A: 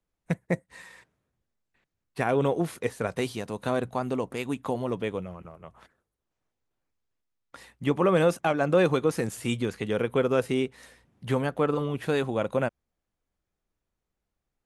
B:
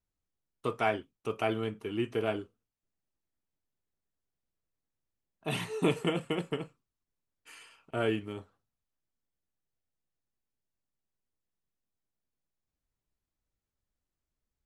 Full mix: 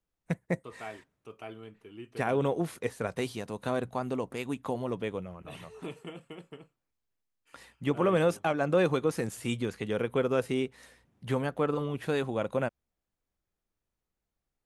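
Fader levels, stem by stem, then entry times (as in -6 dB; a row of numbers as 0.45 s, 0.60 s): -3.5 dB, -13.0 dB; 0.00 s, 0.00 s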